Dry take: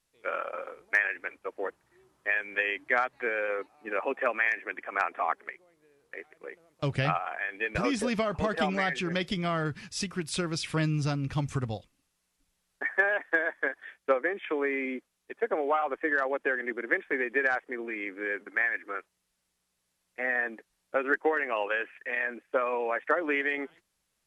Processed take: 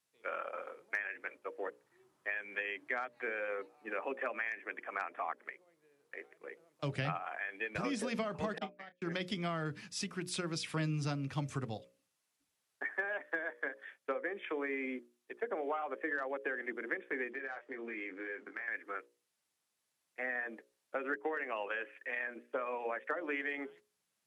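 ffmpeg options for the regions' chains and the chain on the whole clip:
-filter_complex "[0:a]asettb=1/sr,asplit=3[a][b][c];[a]atrim=end=8.584[d];[b]atrim=start=8.58:end=9.02,asetpts=PTS-STARTPTS,afade=t=in:d=0.004:c=qsin,afade=t=out:st=0.436:d=0.004:c=qsin,lowpass=5k,agate=range=-46dB:threshold=-25dB:ratio=16:release=100:detection=peak,asplit=2[e][f];[f]adelay=30,volume=-13dB[g];[e][g]amix=inputs=2:normalize=0,atrim=end_sample=19404[h];[c]atrim=start=9.016[i];[d][h]acrossfade=d=0.004:c1=hsin:c2=qsin[j];[j][i]acrossfade=d=0.004:c1=qsin:c2=hsin,asettb=1/sr,asplit=3[k][l][m];[k]atrim=end=17.304[n];[l]atrim=start=17.3:end=18.68,asetpts=PTS-STARTPTS,afade=t=in:d=0.004:c=qsin,afade=t=out:st=1.376:d=0.004:c=qsin,lowpass=7k,acompressor=threshold=-33dB:ratio=12:attack=3.2:release=140:knee=1:detection=peak,asplit=2[o][p];[p]adelay=22,volume=-7dB[q];[o][q]amix=inputs=2:normalize=0,atrim=end_sample=60858[r];[m]atrim=start=18.676[s];[n][r]acrossfade=d=0.004:c1=hsin:c2=qsin[t];[t][s]acrossfade=d=0.004:c1=qsin:c2=hsin,highpass=130,bandreject=f=60:t=h:w=6,bandreject=f=120:t=h:w=6,bandreject=f=180:t=h:w=6,bandreject=f=240:t=h:w=6,bandreject=f=300:t=h:w=6,bandreject=f=360:t=h:w=6,bandreject=f=420:t=h:w=6,bandreject=f=480:t=h:w=6,bandreject=f=540:t=h:w=6,bandreject=f=600:t=h:w=6,acrossover=split=240[u][v];[v]acompressor=threshold=-30dB:ratio=3[w];[u][w]amix=inputs=2:normalize=0,volume=-5dB"

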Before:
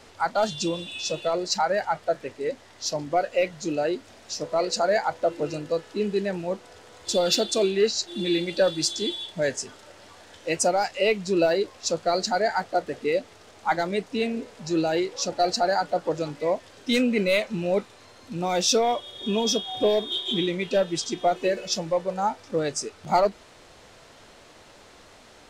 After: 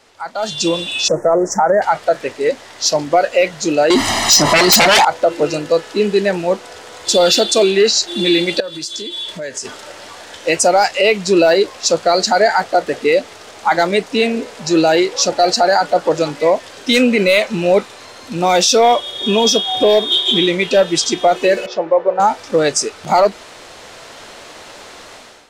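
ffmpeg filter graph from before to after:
-filter_complex "[0:a]asettb=1/sr,asplit=3[a][b][c];[a]atrim=end=1.084[d];[b]atrim=start=1.08:end=1.82,asetpts=PTS-STARTPTS,afade=t=in:d=0.004:c=qsin,afade=t=out:st=0.736:d=0.004:c=qsin,tiltshelf=f=1.1k:g=6.5,acompressor=threshold=-21dB:ratio=6:attack=3.2:release=140:knee=1:detection=peak,asuperstop=centerf=3400:order=12:qfactor=0.91[e];[c]atrim=start=1.816[f];[d][e]acrossfade=d=0.004:c1=hsin:c2=qsin[g];[g][f]acrossfade=d=0.004:c1=qsin:c2=hsin,asettb=1/sr,asplit=3[h][i][j];[h]atrim=end=3.904[k];[i]atrim=start=3.9:end=5.05,asetpts=PTS-STARTPTS,afade=t=in:d=0.004:c=qsin,afade=t=out:st=1.146:d=0.004:c=qsin,aecho=1:1:1:0.9,atrim=end_sample=50715,aeval=exprs='0.299*sin(PI/2*5.01*val(0)/0.299)':c=same[l];[j]atrim=start=5.046[m];[k][l]acrossfade=d=0.004:c1=hsin:c2=qsin[n];[n][m]acrossfade=d=0.004:c1=qsin:c2=hsin,asettb=1/sr,asplit=3[o][p][q];[o]atrim=end=8.604[r];[p]atrim=start=8.6:end=9.65,asetpts=PTS-STARTPTS,afade=t=in:d=0.004:c=qsin,afade=t=out:st=1.046:d=0.004:c=qsin,acompressor=threshold=-36dB:ratio=8:attack=3.2:release=140:knee=1:detection=peak,asuperstop=centerf=780:order=4:qfactor=4.8[s];[q]atrim=start=9.646[t];[r][s]acrossfade=d=0.004:c1=hsin:c2=qsin[u];[u][t]acrossfade=d=0.004:c1=qsin:c2=hsin,asettb=1/sr,asplit=3[v][w][x];[v]atrim=end=21.664[y];[w]atrim=start=21.66:end=22.2,asetpts=PTS-STARTPTS,afade=t=in:d=0.004:c=qsin,afade=t=out:st=0.536:d=0.004:c=qsin,lowpass=1.5k,lowshelf=f=280:t=q:w=1.5:g=-10.5[z];[x]atrim=start=22.196[aa];[y][z]acrossfade=d=0.004:c1=hsin:c2=qsin[ab];[ab][aa]acrossfade=d=0.004:c1=qsin:c2=hsin,lowshelf=f=250:g=-10,alimiter=limit=-18.5dB:level=0:latency=1:release=45,dynaudnorm=f=340:g=3:m=15.5dB"

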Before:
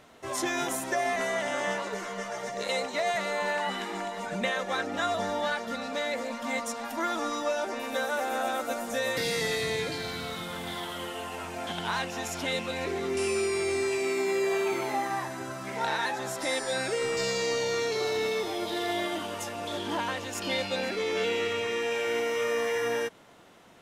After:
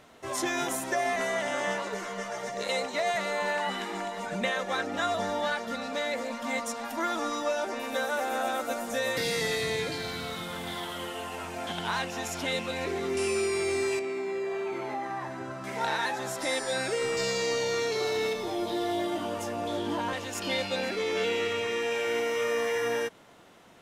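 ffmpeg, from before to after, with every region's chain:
-filter_complex "[0:a]asettb=1/sr,asplit=3[a][b][c];[a]atrim=end=13.994[d];[b]atrim=start=13.99:end=15.64,asetpts=PTS-STARTPTS,afade=t=in:d=0.004:c=qsin,afade=t=out:st=1.646:d=0.004:c=qsin,aemphasis=mode=reproduction:type=75kf,acompressor=threshold=-31dB:ratio=2.5:attack=3.2:release=140:knee=1:detection=peak[e];[c]atrim=start=15.636[f];[d][e]acrossfade=d=0.004:c1=hsin:c2=qsin[g];[g][f]acrossfade=d=0.004:c1=qsin:c2=hsin,asettb=1/sr,asplit=3[h][i][j];[h]atrim=end=18.334[k];[i]atrim=start=18.33:end=20.13,asetpts=PTS-STARTPTS,afade=t=in:d=0.004:c=qsin,afade=t=out:st=1.796:d=0.004:c=qsin,tiltshelf=f=1.2k:g=4.5,acrossover=split=130|3000[l][m][n];[m]acompressor=threshold=-32dB:ratio=2:attack=3.2:release=140:knee=2.83:detection=peak[o];[l][o][n]amix=inputs=3:normalize=0,asplit=2[p][q];[q]adelay=17,volume=-6dB[r];[p][r]amix=inputs=2:normalize=0,atrim=end_sample=79380[s];[j]atrim=start=20.126[t];[k][s]acrossfade=d=0.004:c1=hsin:c2=qsin[u];[u][t]acrossfade=d=0.004:c1=qsin:c2=hsin"

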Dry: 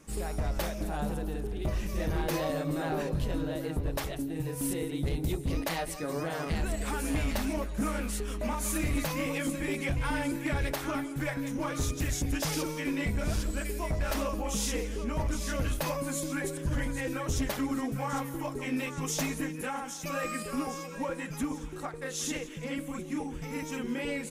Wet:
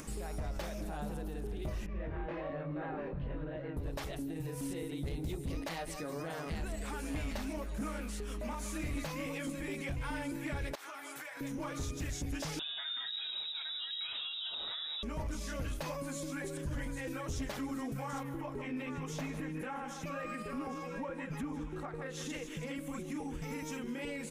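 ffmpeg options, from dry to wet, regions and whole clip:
-filter_complex "[0:a]asettb=1/sr,asplit=3[a][b][c];[a]atrim=end=1.864[d];[b]atrim=start=1.86:end=3.77,asetpts=PTS-STARTPTS,afade=t=in:d=0.004:c=qsin,afade=t=out:st=1.906:d=0.004:c=qsin,lowpass=f=2.3k:w=0.5412,lowpass=f=2.3k:w=1.3066,flanger=delay=19.5:depth=3.3:speed=1.2,aemphasis=mode=production:type=50fm[e];[c]atrim=start=3.766[f];[d][e]acrossfade=d=0.004:c1=hsin:c2=qsin[g];[g][f]acrossfade=d=0.004:c1=qsin:c2=hsin,asettb=1/sr,asplit=3[h][i][j];[h]atrim=end=10.754[k];[i]atrim=start=10.75:end=11.41,asetpts=PTS-STARTPTS,afade=t=in:d=0.004:c=qsin,afade=t=out:st=0.656:d=0.004:c=qsin,highpass=820,acompressor=threshold=-44dB:ratio=12:attack=3.2:release=140:knee=1:detection=peak[l];[j]atrim=start=11.406[m];[k][l]acrossfade=d=0.004:c1=hsin:c2=qsin[n];[n][m]acrossfade=d=0.004:c1=qsin:c2=hsin,asettb=1/sr,asplit=3[o][p][q];[o]atrim=end=12.594[r];[p]atrim=start=12.59:end=15.03,asetpts=PTS-STARTPTS,afade=t=in:d=0.004:c=qsin,afade=t=out:st=2.436:d=0.004:c=qsin,highpass=f=67:p=1,equalizer=f=1.8k:w=2.2:g=-6,lowpass=f=3.3k:t=q:w=0.5098,lowpass=f=3.3k:t=q:w=0.6013,lowpass=f=3.3k:t=q:w=0.9,lowpass=f=3.3k:t=q:w=2.563,afreqshift=-3900[s];[q]atrim=start=15.026[t];[r][s]acrossfade=d=0.004:c1=hsin:c2=qsin[u];[u][t]acrossfade=d=0.004:c1=qsin:c2=hsin,asettb=1/sr,asplit=3[v][w][x];[v]atrim=end=18.234[y];[w]atrim=start=18.23:end=22.3,asetpts=PTS-STARTPTS,afade=t=in:d=0.004:c=qsin,afade=t=out:st=4.066:d=0.004:c=qsin,bass=f=250:g=1,treble=f=4k:g=-13,aecho=1:1:154:0.237,atrim=end_sample=179487[z];[x]atrim=start=22.296[aa];[y][z]acrossfade=d=0.004:c1=hsin:c2=qsin[ab];[ab][aa]acrossfade=d=0.004:c1=qsin:c2=hsin,acrossover=split=7700[ac][ad];[ad]acompressor=threshold=-48dB:ratio=4:attack=1:release=60[ae];[ac][ae]amix=inputs=2:normalize=0,alimiter=level_in=8dB:limit=-24dB:level=0:latency=1:release=120,volume=-8dB,acompressor=mode=upward:threshold=-40dB:ratio=2.5"

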